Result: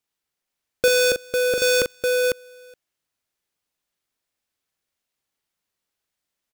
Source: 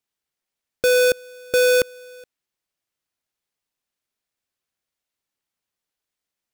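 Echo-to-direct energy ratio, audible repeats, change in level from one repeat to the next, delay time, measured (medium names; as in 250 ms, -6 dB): -3.0 dB, 2, no regular repeats, 41 ms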